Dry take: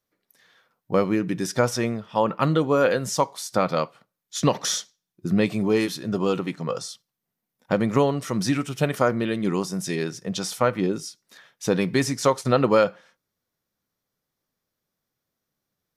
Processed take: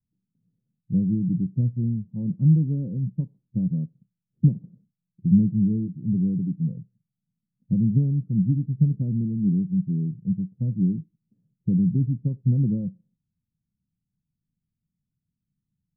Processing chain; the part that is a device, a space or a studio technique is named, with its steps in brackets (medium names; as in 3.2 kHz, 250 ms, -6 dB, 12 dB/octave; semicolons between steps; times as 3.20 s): the neighbour's flat through the wall (low-pass 190 Hz 24 dB/octave; peaking EQ 180 Hz +3 dB); trim +6.5 dB